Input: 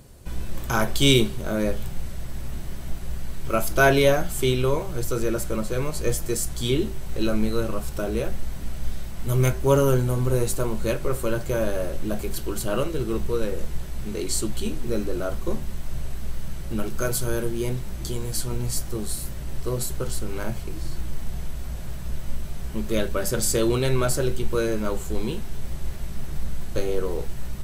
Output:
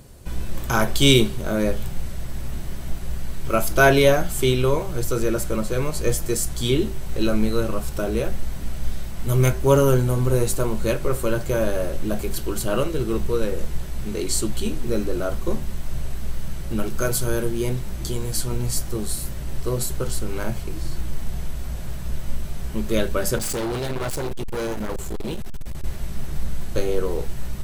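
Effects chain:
0:23.38–0:25.84: hard clipping −26 dBFS, distortion −14 dB
level +2.5 dB

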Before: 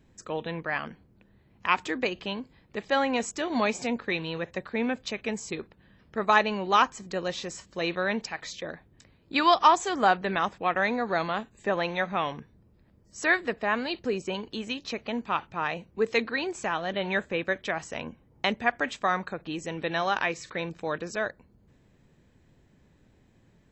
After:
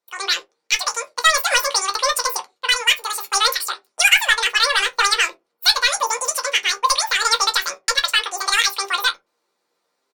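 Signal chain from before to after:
noise gate −47 dBFS, range −18 dB
meter weighting curve A
automatic gain control gain up to 11.5 dB
in parallel at −10.5 dB: wave folding −13 dBFS
on the sum: double-tracking delay 29 ms −12 dB
on a send at −6 dB: convolution reverb RT60 0.35 s, pre-delay 5 ms
on the sum: wrong playback speed 33 rpm record played at 78 rpm
level −1 dB

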